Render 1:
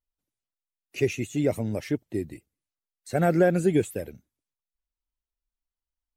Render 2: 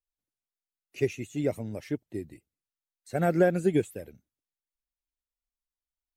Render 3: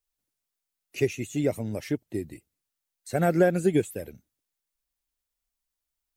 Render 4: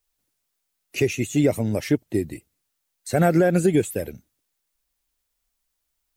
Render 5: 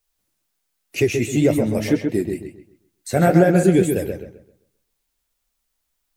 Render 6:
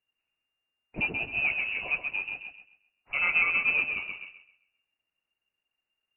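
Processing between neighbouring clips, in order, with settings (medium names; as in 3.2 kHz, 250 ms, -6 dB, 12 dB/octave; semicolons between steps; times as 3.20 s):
upward expansion 1.5:1, over -29 dBFS; trim -1 dB
treble shelf 5.5 kHz +5 dB; in parallel at -1 dB: compression, threshold -33 dBFS, peak gain reduction 15.5 dB
peak limiter -17 dBFS, peak gain reduction 8 dB; trim +8 dB
flange 2 Hz, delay 8.5 ms, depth 8.5 ms, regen -46%; on a send: filtered feedback delay 132 ms, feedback 31%, low-pass 3.2 kHz, level -5 dB; on the sum: trim +6 dB
modulation noise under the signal 13 dB; frequency inversion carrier 2.8 kHz; dynamic bell 2.2 kHz, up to -4 dB, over -27 dBFS, Q 0.85; trim -8 dB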